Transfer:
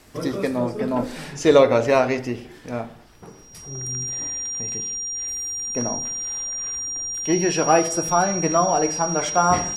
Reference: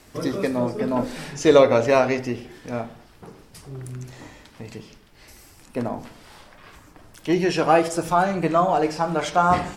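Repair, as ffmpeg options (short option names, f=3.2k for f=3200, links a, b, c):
-af "bandreject=f=5.7k:w=30"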